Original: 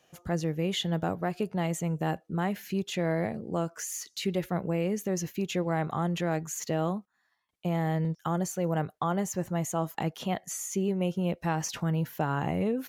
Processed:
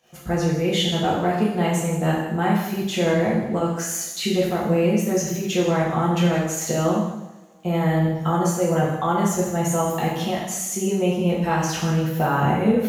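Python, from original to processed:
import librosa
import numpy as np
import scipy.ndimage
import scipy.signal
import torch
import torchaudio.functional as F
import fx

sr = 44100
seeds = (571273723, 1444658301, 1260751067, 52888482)

p1 = fx.dmg_crackle(x, sr, seeds[0], per_s=40.0, level_db=-51.0)
p2 = fx.volume_shaper(p1, sr, bpm=134, per_beat=1, depth_db=-9, release_ms=92.0, shape='fast start')
p3 = p2 + fx.echo_single(p2, sr, ms=159, db=-14.5, dry=0)
p4 = fx.rev_double_slope(p3, sr, seeds[1], early_s=0.85, late_s=2.9, knee_db=-25, drr_db=-6.0)
y = F.gain(torch.from_numpy(p4), 2.5).numpy()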